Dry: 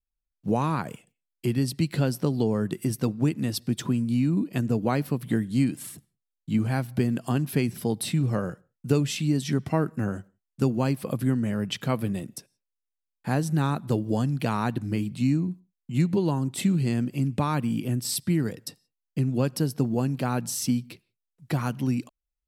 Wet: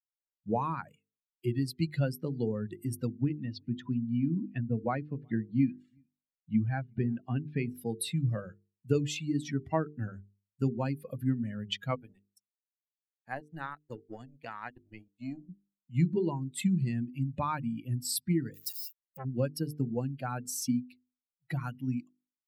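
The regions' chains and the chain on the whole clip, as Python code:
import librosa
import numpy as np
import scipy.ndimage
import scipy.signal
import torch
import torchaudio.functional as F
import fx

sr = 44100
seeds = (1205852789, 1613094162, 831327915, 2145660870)

y = fx.chain(x, sr, fx.air_absorb(metres=160.0),
    fx.echo_single(ms=367, db=-19.5), at=(3.12, 7.67))
y = fx.chain(y, sr, fx.power_curve(exponent=1.4),
    fx.low_shelf(hz=200.0, db=-7.0),
    fx.transient(attack_db=0, sustain_db=-11), at=(11.95, 15.49))
y = fx.chain(y, sr, fx.crossing_spikes(level_db=-27.0),
    fx.transformer_sat(knee_hz=720.0), at=(18.54, 19.25))
y = fx.bin_expand(y, sr, power=2.0)
y = fx.peak_eq(y, sr, hz=5800.0, db=-2.0, octaves=0.77)
y = fx.hum_notches(y, sr, base_hz=50, count=9)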